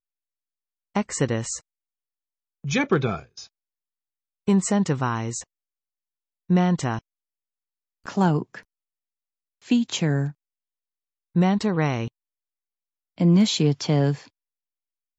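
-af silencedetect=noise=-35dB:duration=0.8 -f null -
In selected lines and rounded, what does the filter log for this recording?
silence_start: 0.00
silence_end: 0.95 | silence_duration: 0.95
silence_start: 1.58
silence_end: 2.64 | silence_duration: 1.06
silence_start: 3.43
silence_end: 4.48 | silence_duration: 1.04
silence_start: 5.42
silence_end: 6.50 | silence_duration: 1.08
silence_start: 6.99
silence_end: 8.06 | silence_duration: 1.07
silence_start: 8.59
silence_end: 9.68 | silence_duration: 1.09
silence_start: 10.31
silence_end: 11.36 | silence_duration: 1.05
silence_start: 12.08
silence_end: 13.18 | silence_duration: 1.10
silence_start: 14.18
silence_end: 15.19 | silence_duration: 1.01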